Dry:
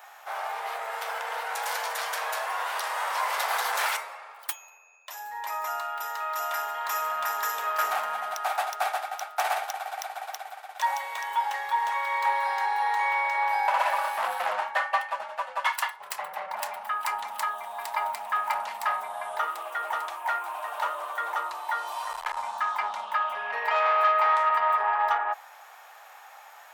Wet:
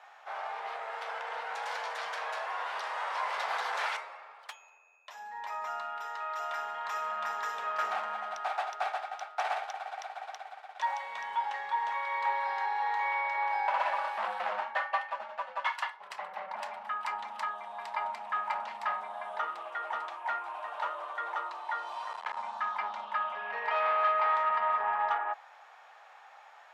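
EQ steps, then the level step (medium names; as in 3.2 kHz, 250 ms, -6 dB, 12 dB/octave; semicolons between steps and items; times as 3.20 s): high-pass 43 Hz; low-pass 4.3 kHz 12 dB/octave; resonant low shelf 140 Hz -13.5 dB, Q 3; -5.5 dB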